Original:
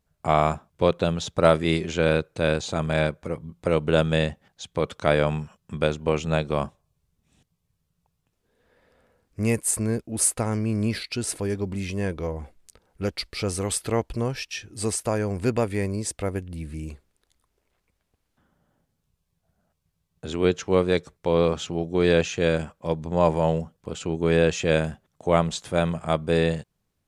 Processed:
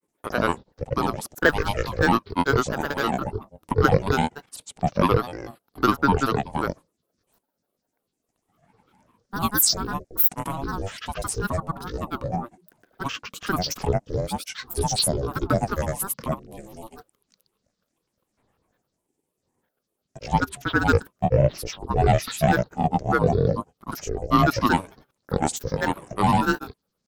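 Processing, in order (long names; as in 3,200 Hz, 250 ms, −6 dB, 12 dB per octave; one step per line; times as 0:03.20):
graphic EQ with 10 bands 125 Hz −9 dB, 500 Hz +11 dB, 1,000 Hz −9 dB, 2,000 Hz +5 dB, 4,000 Hz −6 dB, 8,000 Hz +12 dB
ring modulation 310 Hz
granular cloud, grains 20 per second, pitch spread up and down by 12 semitones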